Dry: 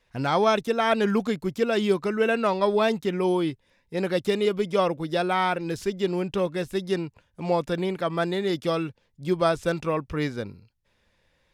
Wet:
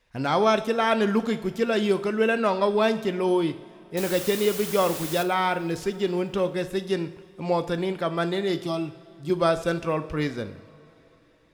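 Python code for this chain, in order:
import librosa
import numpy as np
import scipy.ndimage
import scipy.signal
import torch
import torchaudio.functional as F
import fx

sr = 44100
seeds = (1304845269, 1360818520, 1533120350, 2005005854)

y = fx.quant_dither(x, sr, seeds[0], bits=6, dither='triangular', at=(3.97, 5.23))
y = fx.fixed_phaser(y, sr, hz=330.0, stages=8, at=(8.64, 9.3))
y = fx.rev_double_slope(y, sr, seeds[1], early_s=0.58, late_s=4.0, knee_db=-18, drr_db=10.0)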